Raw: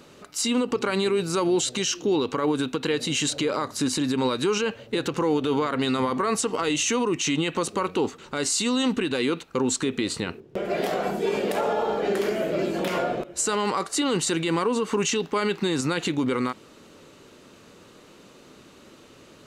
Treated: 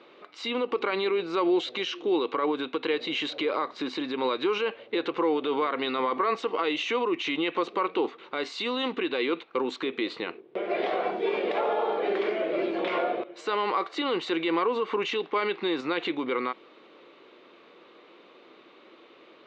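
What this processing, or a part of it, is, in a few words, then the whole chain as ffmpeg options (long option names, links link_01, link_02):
phone earpiece: -af "highpass=340,equalizer=frequency=340:width_type=q:width=4:gain=7,equalizer=frequency=490:width_type=q:width=4:gain=4,equalizer=frequency=730:width_type=q:width=4:gain=4,equalizer=frequency=1100:width_type=q:width=4:gain=6,equalizer=frequency=2200:width_type=q:width=4:gain=7,equalizer=frequency=3600:width_type=q:width=4:gain=5,lowpass=frequency=3800:width=0.5412,lowpass=frequency=3800:width=1.3066,volume=-5dB"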